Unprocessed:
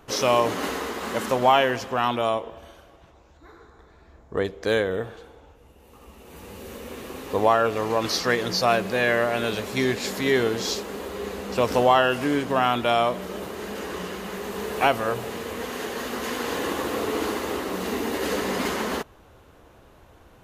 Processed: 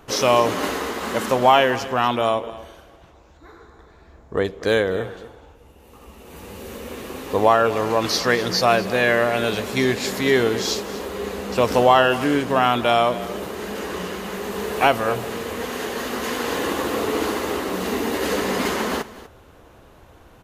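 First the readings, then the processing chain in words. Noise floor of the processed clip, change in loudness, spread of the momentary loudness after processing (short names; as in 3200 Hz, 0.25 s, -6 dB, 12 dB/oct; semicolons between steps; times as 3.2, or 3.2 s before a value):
-49 dBFS, +3.5 dB, 13 LU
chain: echo 0.245 s -17 dB; gain +3.5 dB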